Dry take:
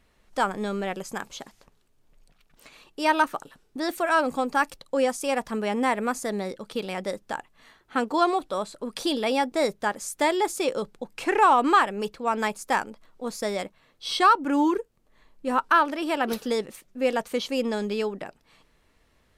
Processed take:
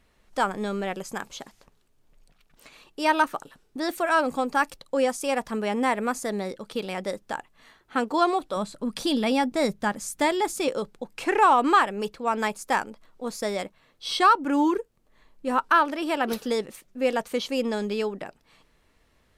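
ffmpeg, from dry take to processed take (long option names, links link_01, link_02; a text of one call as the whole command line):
ffmpeg -i in.wav -filter_complex "[0:a]asettb=1/sr,asplit=3[link_01][link_02][link_03];[link_01]atrim=end=8.564[link_04];[link_02]atrim=start=8.56:end=10.68,asetpts=PTS-STARTPTS,afade=type=in:duration=0.004:curve=qsin,afade=type=out:start_time=2.116:duration=0.004:curve=qsin,lowshelf=frequency=290:width_type=q:width=1.5:gain=6[link_05];[link_03]atrim=start=10.676[link_06];[link_04][link_05]acrossfade=duration=0.004:curve1=hsin:curve2=qsin[link_07];[link_07][link_06]acrossfade=duration=0.004:curve1=qsin:curve2=hsin" out.wav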